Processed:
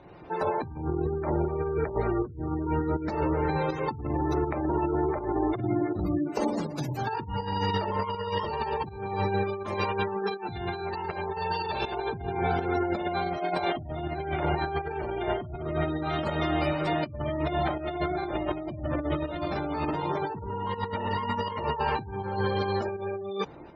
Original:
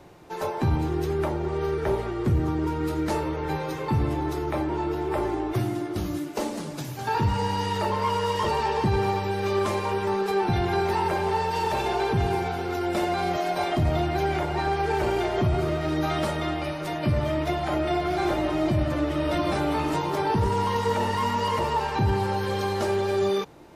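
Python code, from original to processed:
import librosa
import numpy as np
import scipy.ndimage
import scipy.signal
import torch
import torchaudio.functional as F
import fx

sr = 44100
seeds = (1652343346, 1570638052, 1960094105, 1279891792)

y = fx.spec_gate(x, sr, threshold_db=-25, keep='strong')
y = fx.high_shelf(y, sr, hz=3100.0, db=10.5, at=(9.75, 11.92))
y = fx.over_compress(y, sr, threshold_db=-28.0, ratio=-0.5)
y = fx.cheby_harmonics(y, sr, harmonics=(2,), levels_db=(-35,), full_scale_db=-14.0)
y = fx.volume_shaper(y, sr, bpm=81, per_beat=1, depth_db=-7, release_ms=286.0, shape='fast start')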